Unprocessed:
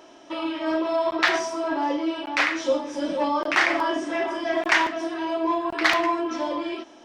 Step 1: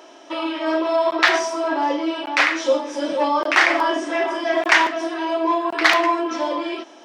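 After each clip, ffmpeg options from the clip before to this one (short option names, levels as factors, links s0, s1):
-af "highpass=310,volume=1.78"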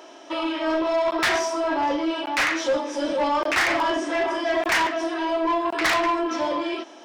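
-af "asoftclip=type=tanh:threshold=0.141"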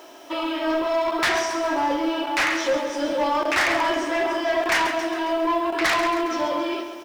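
-af "acrusher=bits=8:mix=0:aa=0.000001,aecho=1:1:136|272|408|544|680|816|952:0.316|0.18|0.103|0.0586|0.0334|0.019|0.0108"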